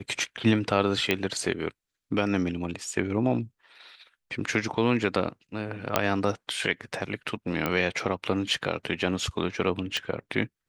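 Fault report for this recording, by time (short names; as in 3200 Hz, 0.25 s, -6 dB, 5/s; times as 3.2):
1.11 pop -9 dBFS
5.96 pop -5 dBFS
7.66 pop -12 dBFS
9.97 pop -15 dBFS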